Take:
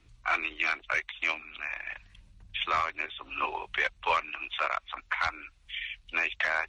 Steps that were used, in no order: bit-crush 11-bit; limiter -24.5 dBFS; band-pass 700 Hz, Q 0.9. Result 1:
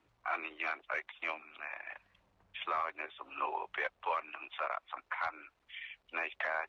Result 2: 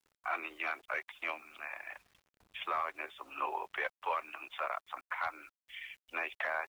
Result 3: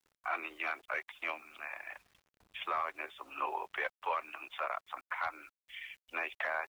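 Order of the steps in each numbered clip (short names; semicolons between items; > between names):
bit-crush > band-pass > limiter; band-pass > limiter > bit-crush; band-pass > bit-crush > limiter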